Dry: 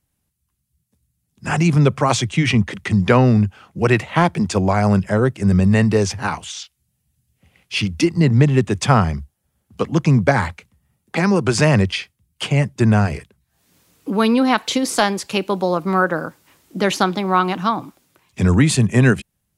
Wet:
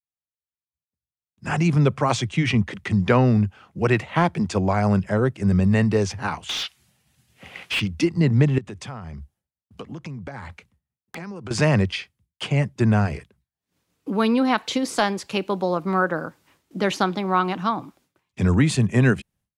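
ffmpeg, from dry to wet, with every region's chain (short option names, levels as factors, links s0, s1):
-filter_complex "[0:a]asettb=1/sr,asplit=3[s0][s1][s2];[s0]atrim=end=6.494[s3];[s1]atrim=start=6.49:end=7.8,asetpts=PTS-STARTPTS,afade=t=in:d=0.004:c=qsin,afade=t=out:st=1.306:d=0.004:c=qsin,acrossover=split=4100[s4][s5];[s5]acompressor=threshold=0.00447:ratio=4:attack=1:release=60[s6];[s4][s6]amix=inputs=2:normalize=0,asplit=2[s7][s8];[s8]highpass=f=720:p=1,volume=35.5,asoftclip=type=tanh:threshold=0.282[s9];[s7][s9]amix=inputs=2:normalize=0,lowpass=f=4300:p=1,volume=0.501[s10];[s2]atrim=start=7.796[s11];[s3][s10]acrossfade=d=0.004:c1=hsin:c2=qsin[s12];[s12][s11]acrossfade=d=0.004:c1=qsin:c2=hsin,asettb=1/sr,asplit=3[s13][s14][s15];[s13]atrim=end=8.584[s16];[s14]atrim=start=8.58:end=11.51,asetpts=PTS-STARTPTS,afade=t=in:d=0.004:c=qsin,afade=t=out:st=2.926:d=0.004:c=qsin,acompressor=threshold=0.0447:ratio=10:attack=3.2:release=140:knee=1:detection=peak,aeval=exprs='(mod(5.31*val(0)+1,2)-1)/5.31':c=same[s17];[s15]atrim=start=11.506[s18];[s16][s17]acrossfade=d=0.004:c1=hsin:c2=qsin[s19];[s19][s18]acrossfade=d=0.004:c1=qsin:c2=hsin,agate=range=0.0224:threshold=0.00316:ratio=3:detection=peak,highshelf=f=7400:g=-8.5,volume=0.631"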